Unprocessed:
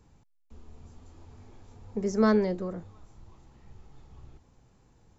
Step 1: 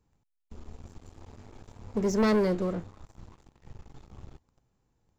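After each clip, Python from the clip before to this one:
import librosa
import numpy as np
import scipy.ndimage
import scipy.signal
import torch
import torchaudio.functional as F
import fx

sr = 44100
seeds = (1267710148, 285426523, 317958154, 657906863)

y = fx.leveller(x, sr, passes=3)
y = y * 10.0 ** (-6.5 / 20.0)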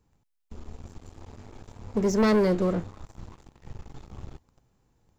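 y = fx.rider(x, sr, range_db=10, speed_s=0.5)
y = y * 10.0 ** (5.0 / 20.0)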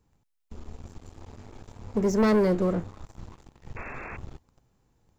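y = fx.spec_paint(x, sr, seeds[0], shape='noise', start_s=3.76, length_s=0.41, low_hz=210.0, high_hz=2700.0, level_db=-39.0)
y = fx.dynamic_eq(y, sr, hz=4100.0, q=0.78, threshold_db=-49.0, ratio=4.0, max_db=-4)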